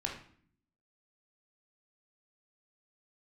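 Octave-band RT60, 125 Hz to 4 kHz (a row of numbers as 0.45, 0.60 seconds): 0.90, 0.90, 0.55, 0.50, 0.50, 0.45 seconds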